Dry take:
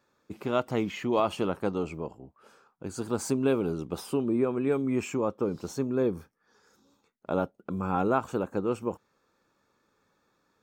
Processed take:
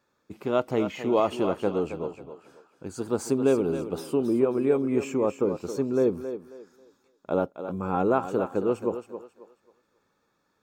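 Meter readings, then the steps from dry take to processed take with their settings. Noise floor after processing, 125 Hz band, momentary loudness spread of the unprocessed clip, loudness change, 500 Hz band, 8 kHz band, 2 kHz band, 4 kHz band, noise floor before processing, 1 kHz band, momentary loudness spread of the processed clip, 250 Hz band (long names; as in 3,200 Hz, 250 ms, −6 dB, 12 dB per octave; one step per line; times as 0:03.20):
−73 dBFS, −0.5 dB, 12 LU, +3.0 dB, +4.5 dB, −1.0 dB, −0.5 dB, −1.0 dB, −73 dBFS, +1.5 dB, 13 LU, +2.0 dB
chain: dynamic equaliser 450 Hz, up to +6 dB, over −37 dBFS, Q 0.8
feedback echo with a high-pass in the loop 270 ms, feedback 31%, high-pass 270 Hz, level −9 dB
level −1.5 dB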